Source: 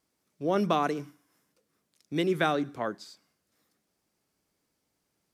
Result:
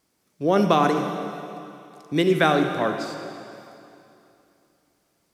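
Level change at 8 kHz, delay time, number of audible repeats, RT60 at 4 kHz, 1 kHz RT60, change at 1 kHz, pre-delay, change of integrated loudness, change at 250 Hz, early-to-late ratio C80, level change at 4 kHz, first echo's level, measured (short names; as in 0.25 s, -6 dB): +8.0 dB, none, none, 2.6 s, 2.8 s, +8.0 dB, 37 ms, +7.0 dB, +8.0 dB, 6.5 dB, +8.0 dB, none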